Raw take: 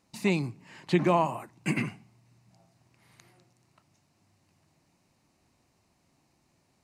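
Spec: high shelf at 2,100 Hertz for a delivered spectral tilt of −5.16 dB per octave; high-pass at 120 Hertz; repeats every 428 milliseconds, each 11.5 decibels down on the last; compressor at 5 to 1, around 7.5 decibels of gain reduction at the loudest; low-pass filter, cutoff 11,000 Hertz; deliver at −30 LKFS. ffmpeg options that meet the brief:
ffmpeg -i in.wav -af "highpass=120,lowpass=11000,highshelf=frequency=2100:gain=-9,acompressor=threshold=-27dB:ratio=5,aecho=1:1:428|856|1284:0.266|0.0718|0.0194,volume=6dB" out.wav

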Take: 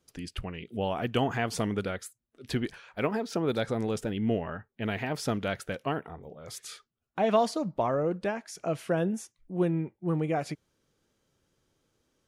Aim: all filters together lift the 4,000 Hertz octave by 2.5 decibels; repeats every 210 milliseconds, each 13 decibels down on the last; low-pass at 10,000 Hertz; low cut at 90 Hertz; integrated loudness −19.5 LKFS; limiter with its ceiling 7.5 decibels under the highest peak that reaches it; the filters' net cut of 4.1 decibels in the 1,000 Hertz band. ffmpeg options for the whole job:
ffmpeg -i in.wav -af "highpass=90,lowpass=10000,equalizer=frequency=1000:width_type=o:gain=-6.5,equalizer=frequency=4000:width_type=o:gain=4,alimiter=limit=-21dB:level=0:latency=1,aecho=1:1:210|420|630:0.224|0.0493|0.0108,volume=14dB" out.wav

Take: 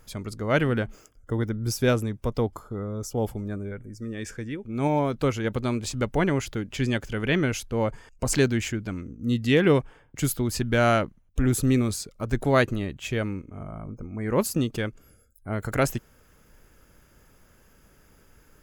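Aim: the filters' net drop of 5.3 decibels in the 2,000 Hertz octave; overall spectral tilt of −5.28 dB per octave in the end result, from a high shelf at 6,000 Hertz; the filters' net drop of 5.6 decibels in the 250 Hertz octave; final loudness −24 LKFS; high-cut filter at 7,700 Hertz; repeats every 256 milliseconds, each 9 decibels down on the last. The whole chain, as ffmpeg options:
ffmpeg -i in.wav -af "lowpass=7700,equalizer=frequency=250:width_type=o:gain=-7,equalizer=frequency=2000:width_type=o:gain=-7.5,highshelf=frequency=6000:gain=5,aecho=1:1:256|512|768|1024:0.355|0.124|0.0435|0.0152,volume=5dB" out.wav

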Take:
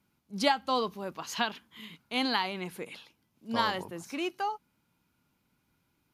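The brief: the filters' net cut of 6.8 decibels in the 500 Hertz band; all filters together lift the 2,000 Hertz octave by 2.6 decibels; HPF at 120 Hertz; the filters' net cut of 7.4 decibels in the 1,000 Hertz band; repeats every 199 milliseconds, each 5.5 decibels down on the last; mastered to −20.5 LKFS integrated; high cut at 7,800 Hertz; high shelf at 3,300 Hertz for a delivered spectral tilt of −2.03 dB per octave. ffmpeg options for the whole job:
ffmpeg -i in.wav -af "highpass=120,lowpass=7800,equalizer=frequency=500:width_type=o:gain=-6.5,equalizer=frequency=1000:width_type=o:gain=-8.5,equalizer=frequency=2000:width_type=o:gain=4,highshelf=frequency=3300:gain=6.5,aecho=1:1:199|398|597|796|995|1194|1393:0.531|0.281|0.149|0.079|0.0419|0.0222|0.0118,volume=10.5dB" out.wav

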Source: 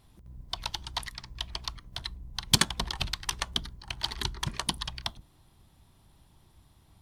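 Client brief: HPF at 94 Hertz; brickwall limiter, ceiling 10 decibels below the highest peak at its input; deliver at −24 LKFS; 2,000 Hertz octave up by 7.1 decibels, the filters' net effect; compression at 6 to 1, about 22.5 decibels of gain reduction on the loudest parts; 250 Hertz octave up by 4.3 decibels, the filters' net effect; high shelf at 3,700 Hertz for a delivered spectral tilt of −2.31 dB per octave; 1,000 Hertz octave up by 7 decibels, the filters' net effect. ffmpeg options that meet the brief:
ffmpeg -i in.wav -af "highpass=94,equalizer=frequency=250:width_type=o:gain=6,equalizer=frequency=1000:width_type=o:gain=6,equalizer=frequency=2000:width_type=o:gain=6,highshelf=frequency=3700:gain=3.5,acompressor=threshold=-38dB:ratio=6,volume=23dB,alimiter=limit=-5.5dB:level=0:latency=1" out.wav

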